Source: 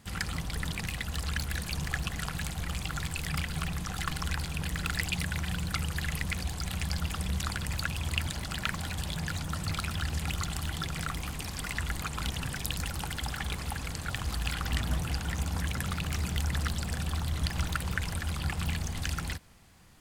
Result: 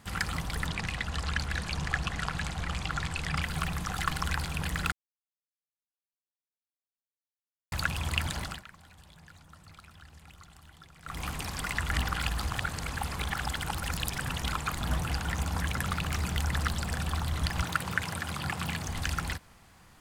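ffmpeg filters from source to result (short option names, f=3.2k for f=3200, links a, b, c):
-filter_complex "[0:a]asettb=1/sr,asplit=3[a][b][c];[a]atrim=end=0.664[d];[b]atrim=start=0.66:end=3.42,asetpts=PTS-STARTPTS,afade=t=in:d=0.004:c=qsin,afade=t=out:st=2.756:d=0.004:c=qsin,lowpass=7.2k[e];[c]atrim=start=3.416[f];[d][e]acrossfade=d=0.004:c1=hsin:c2=qsin[g];[g][f]acrossfade=d=0.004:c1=qsin:c2=hsin,asettb=1/sr,asplit=3[h][i][j];[h]atrim=end=17.624[k];[i]atrim=start=17.62:end=18.86,asetpts=PTS-STARTPTS,afade=t=in:d=0.004:c=qsin,afade=t=out:st=1.236:d=0.004:c=qsin,highpass=f=95:w=0.5412,highpass=f=95:w=1.3066[l];[j]atrim=start=18.856[m];[k][l]acrossfade=d=0.004:c1=hsin:c2=qsin[n];[n][m]acrossfade=d=0.004:c1=qsin:c2=hsin,asplit=7[o][p][q][r][s][t][u];[o]atrim=end=4.92,asetpts=PTS-STARTPTS,afade=t=out:st=4.916:d=0.004:c=hsin[v];[p]atrim=start=4.92:end=7.72,asetpts=PTS-STARTPTS,volume=0[w];[q]atrim=start=7.72:end=8.63,asetpts=PTS-STARTPTS,afade=t=in:d=0.004:c=hsin,afade=t=out:st=0.7:d=0.21:silence=0.0891251[x];[r]atrim=start=8.63:end=11.03,asetpts=PTS-STARTPTS,volume=-21dB[y];[s]atrim=start=11.03:end=11.932,asetpts=PTS-STARTPTS,afade=t=in:d=0.21:silence=0.0891251[z];[t]atrim=start=11.928:end=14.812,asetpts=PTS-STARTPTS,areverse[aa];[u]atrim=start=14.808[ab];[v][w][x][y][z]concat=n=5:v=0:a=1[ac];[ac][aa]acrossfade=d=0.004:c1=hsin:c2=hsin[ad];[ad][ab]acrossfade=d=0.004:c1=hsin:c2=hsin,equalizer=f=1.1k:w=0.77:g=5.5"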